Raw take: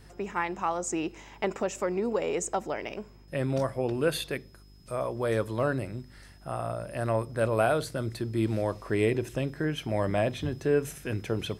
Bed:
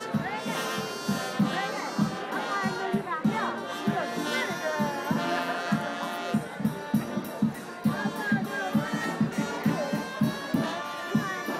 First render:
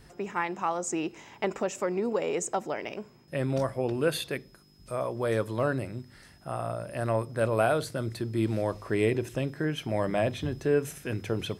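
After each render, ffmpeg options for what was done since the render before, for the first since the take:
-af "bandreject=f=50:t=h:w=4,bandreject=f=100:t=h:w=4"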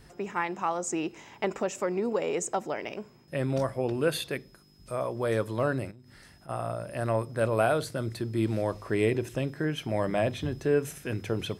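-filter_complex "[0:a]asplit=3[s0][s1][s2];[s0]afade=t=out:st=5.9:d=0.02[s3];[s1]acompressor=threshold=0.00447:ratio=10:attack=3.2:release=140:knee=1:detection=peak,afade=t=in:st=5.9:d=0.02,afade=t=out:st=6.48:d=0.02[s4];[s2]afade=t=in:st=6.48:d=0.02[s5];[s3][s4][s5]amix=inputs=3:normalize=0"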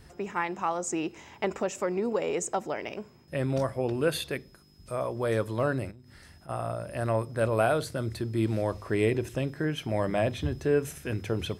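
-af "equalizer=f=75:w=5:g=14.5"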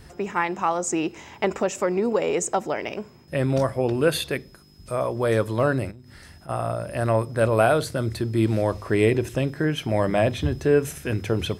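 -af "volume=2"

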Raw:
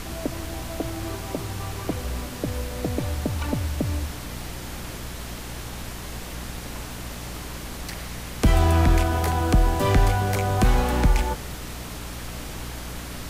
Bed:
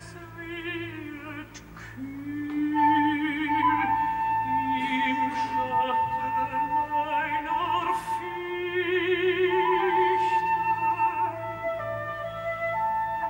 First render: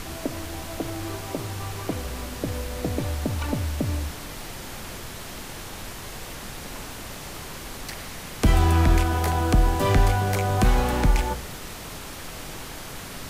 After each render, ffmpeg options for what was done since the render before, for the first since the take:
-af "bandreject=f=60:t=h:w=4,bandreject=f=120:t=h:w=4,bandreject=f=180:t=h:w=4,bandreject=f=240:t=h:w=4,bandreject=f=300:t=h:w=4,bandreject=f=360:t=h:w=4,bandreject=f=420:t=h:w=4,bandreject=f=480:t=h:w=4,bandreject=f=540:t=h:w=4,bandreject=f=600:t=h:w=4,bandreject=f=660:t=h:w=4,bandreject=f=720:t=h:w=4"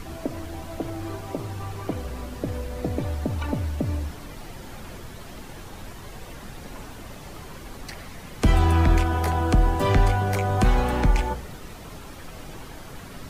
-af "afftdn=nr=9:nf=-38"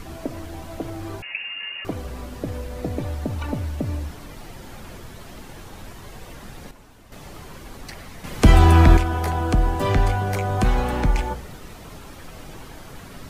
-filter_complex "[0:a]asettb=1/sr,asplit=3[s0][s1][s2];[s0]atrim=end=1.224[s3];[s1]atrim=start=1.22:end=1.85,asetpts=PTS-STARTPTS,afade=t=in:d=0.004:c=qsin,afade=t=out:st=0.626:d=0.004:c=qsin,lowpass=f=2500:t=q:w=0.5098,lowpass=f=2500:t=q:w=0.6013,lowpass=f=2500:t=q:w=0.9,lowpass=f=2500:t=q:w=2.563,afreqshift=-2900[s4];[s2]atrim=start=1.846[s5];[s3][s4]acrossfade=d=0.004:c1=hsin:c2=qsin[s6];[s6][s5]acrossfade=d=0.004:c1=qsin:c2=hsin,asplit=5[s7][s8][s9][s10][s11];[s7]atrim=end=6.712[s12];[s8]atrim=start=6.708:end=7.122,asetpts=PTS-STARTPTS,volume=0.316[s13];[s9]atrim=start=7.118:end=8.242[s14];[s10]atrim=start=8.238:end=8.972,asetpts=PTS-STARTPTS,volume=2.11[s15];[s11]atrim=start=8.968[s16];[s12][s13]acrossfade=d=0.004:c1=hsin:c2=hsin[s17];[s17][s14]acrossfade=d=0.004:c1=hsin:c2=hsin[s18];[s18][s15]acrossfade=d=0.004:c1=hsin:c2=hsin[s19];[s19][s16]acrossfade=d=0.004:c1=hsin:c2=hsin"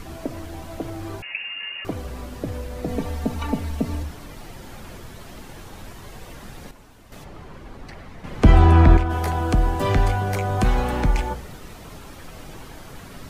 -filter_complex "[0:a]asettb=1/sr,asplit=3[s0][s1][s2];[s0]atrim=end=2.884[s3];[s1]atrim=start=2.88:end=4.03,asetpts=PTS-STARTPTS,afade=t=in:d=0.004:c=qsin,afade=t=out:st=1.146:d=0.004:c=qsin,aecho=1:1:4.4:0.9,atrim=end_sample=50715[s4];[s2]atrim=start=4.026[s5];[s3][s4]acrossfade=d=0.004:c1=hsin:c2=qsin[s6];[s6][s5]acrossfade=d=0.004:c1=qsin:c2=hsin,asplit=3[s7][s8][s9];[s7]afade=t=out:st=7.23:d=0.02[s10];[s8]lowpass=f=1800:p=1,afade=t=in:st=7.23:d=0.02,afade=t=out:st=9.09:d=0.02[s11];[s9]afade=t=in:st=9.09:d=0.02[s12];[s10][s11][s12]amix=inputs=3:normalize=0"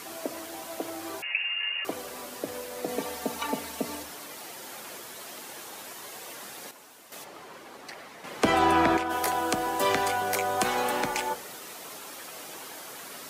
-af "highpass=400,aemphasis=mode=production:type=cd"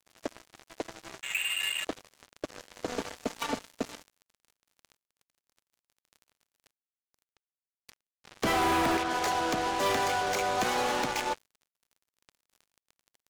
-af "aresample=16000,asoftclip=type=tanh:threshold=0.0631,aresample=44100,acrusher=bits=4:mix=0:aa=0.5"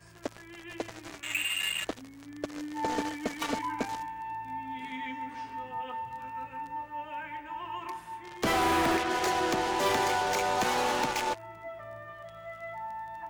-filter_complex "[1:a]volume=0.251[s0];[0:a][s0]amix=inputs=2:normalize=0"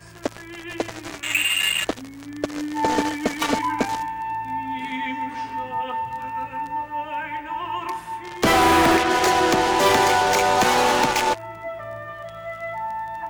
-af "volume=3.16"

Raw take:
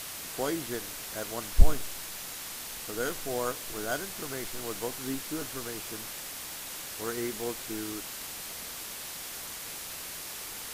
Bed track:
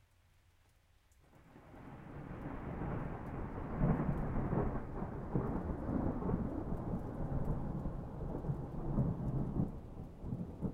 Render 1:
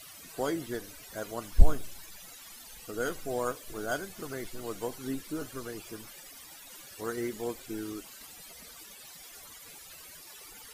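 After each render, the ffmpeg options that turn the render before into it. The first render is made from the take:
-af "afftdn=nr=16:nf=-41"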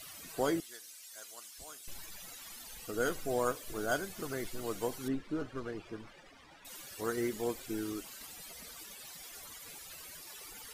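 -filter_complex "[0:a]asettb=1/sr,asplit=3[s0][s1][s2];[s0]atrim=end=0.604[s3];[s1]atrim=start=0.6:end=1.88,asetpts=PTS-STARTPTS,afade=t=in:d=0.004:c=qsin,afade=t=out:st=1.276:d=0.004:c=qsin,bandpass=f=7700:t=q:w=0.64[s4];[s2]atrim=start=1.876[s5];[s3][s4]acrossfade=d=0.004:c1=hsin:c2=qsin[s6];[s6][s5]acrossfade=d=0.004:c1=qsin:c2=hsin,asettb=1/sr,asplit=3[s7][s8][s9];[s7]atrim=end=5.084[s10];[s8]atrim=start=5.08:end=6.65,asetpts=PTS-STARTPTS,afade=t=in:d=0.004:c=qsin,afade=t=out:st=1.566:d=0.004:c=qsin,adynamicsmooth=sensitivity=7:basefreq=2400[s11];[s9]atrim=start=6.646[s12];[s10][s11]acrossfade=d=0.004:c1=hsin:c2=qsin[s13];[s13][s12]acrossfade=d=0.004:c1=qsin:c2=hsin"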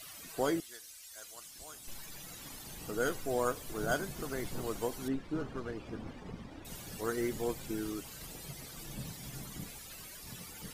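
-filter_complex "[1:a]volume=0.335[s0];[0:a][s0]amix=inputs=2:normalize=0"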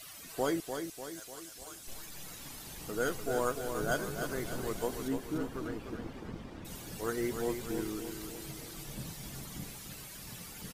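-af "aecho=1:1:297|594|891|1188|1485|1782:0.447|0.228|0.116|0.0593|0.0302|0.0154"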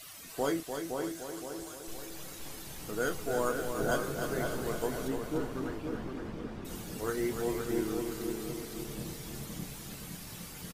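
-filter_complex "[0:a]asplit=2[s0][s1];[s1]adelay=28,volume=0.299[s2];[s0][s2]amix=inputs=2:normalize=0,asplit=2[s3][s4];[s4]adelay=515,lowpass=f=2000:p=1,volume=0.596,asplit=2[s5][s6];[s6]adelay=515,lowpass=f=2000:p=1,volume=0.47,asplit=2[s7][s8];[s8]adelay=515,lowpass=f=2000:p=1,volume=0.47,asplit=2[s9][s10];[s10]adelay=515,lowpass=f=2000:p=1,volume=0.47,asplit=2[s11][s12];[s12]adelay=515,lowpass=f=2000:p=1,volume=0.47,asplit=2[s13][s14];[s14]adelay=515,lowpass=f=2000:p=1,volume=0.47[s15];[s3][s5][s7][s9][s11][s13][s15]amix=inputs=7:normalize=0"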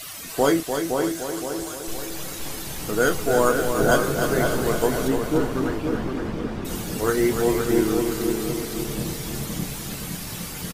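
-af "volume=3.98"

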